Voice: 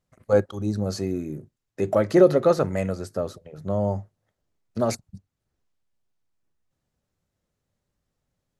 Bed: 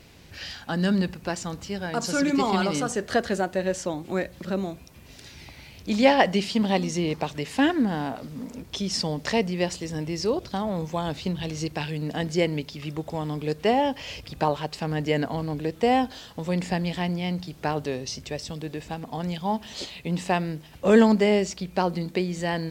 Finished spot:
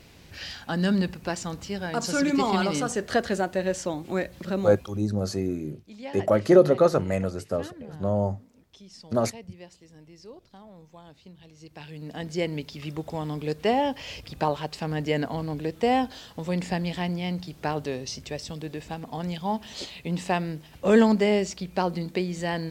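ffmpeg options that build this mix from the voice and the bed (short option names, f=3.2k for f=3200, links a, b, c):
-filter_complex "[0:a]adelay=4350,volume=-0.5dB[a];[1:a]volume=18.5dB,afade=t=out:st=4.81:d=0.25:silence=0.1,afade=t=in:st=11.59:d=1.22:silence=0.112202[b];[a][b]amix=inputs=2:normalize=0"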